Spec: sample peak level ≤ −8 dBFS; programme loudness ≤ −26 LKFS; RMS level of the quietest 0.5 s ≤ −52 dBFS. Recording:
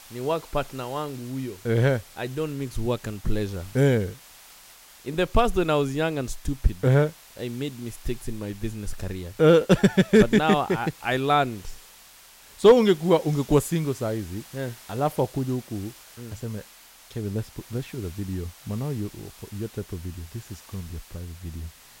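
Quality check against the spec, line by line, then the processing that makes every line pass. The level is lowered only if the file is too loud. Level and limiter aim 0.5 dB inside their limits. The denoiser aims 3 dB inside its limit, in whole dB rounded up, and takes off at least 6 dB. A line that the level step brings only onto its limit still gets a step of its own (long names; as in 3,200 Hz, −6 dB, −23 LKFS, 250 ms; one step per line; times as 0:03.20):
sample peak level −5.5 dBFS: out of spec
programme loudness −25.0 LKFS: out of spec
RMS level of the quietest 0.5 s −50 dBFS: out of spec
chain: broadband denoise 6 dB, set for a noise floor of −50 dBFS
level −1.5 dB
brickwall limiter −8.5 dBFS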